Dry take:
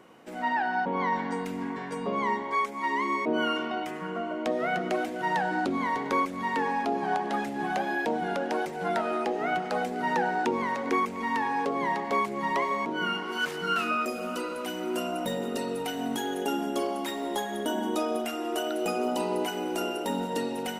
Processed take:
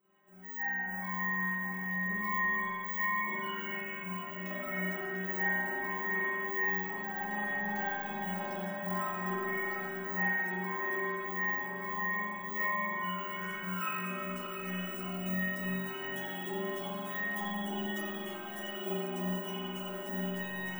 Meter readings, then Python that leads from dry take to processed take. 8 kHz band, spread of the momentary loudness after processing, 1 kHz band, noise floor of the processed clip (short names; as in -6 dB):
under -10 dB, 7 LU, -10.0 dB, -41 dBFS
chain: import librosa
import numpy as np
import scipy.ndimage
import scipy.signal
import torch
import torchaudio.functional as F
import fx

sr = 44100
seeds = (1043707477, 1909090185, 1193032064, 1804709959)

p1 = fx.stiff_resonator(x, sr, f0_hz=190.0, decay_s=0.6, stiffness=0.008)
p2 = fx.rider(p1, sr, range_db=10, speed_s=2.0)
p3 = fx.graphic_eq(p2, sr, hz=(125, 500, 4000), db=(4, -5, -8))
p4 = (np.kron(p3[::2], np.eye(2)[0]) * 2)[:len(p3)]
p5 = p4 + fx.echo_alternate(p4, sr, ms=346, hz=1300.0, feedback_pct=78, wet_db=-5.0, dry=0)
y = fx.rev_spring(p5, sr, rt60_s=1.6, pass_ms=(44,), chirp_ms=80, drr_db=-9.5)